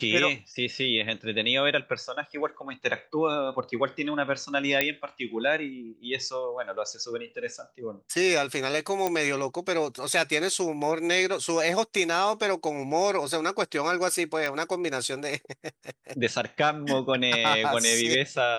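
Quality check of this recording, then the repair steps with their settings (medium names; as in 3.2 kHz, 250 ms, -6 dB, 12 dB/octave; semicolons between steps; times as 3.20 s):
4.81 s: pop -7 dBFS
9.07 s: pop -12 dBFS
14.46 s: pop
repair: de-click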